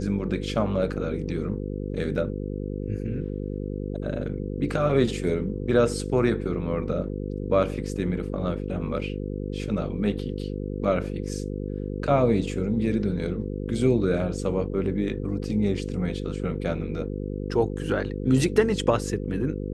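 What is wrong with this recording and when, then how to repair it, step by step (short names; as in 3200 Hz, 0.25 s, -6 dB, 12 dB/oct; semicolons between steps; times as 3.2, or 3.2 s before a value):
buzz 50 Hz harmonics 10 -31 dBFS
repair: de-hum 50 Hz, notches 10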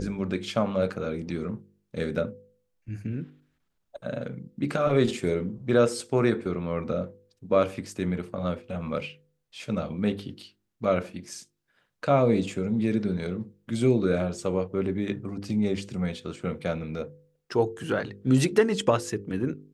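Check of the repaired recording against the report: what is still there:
none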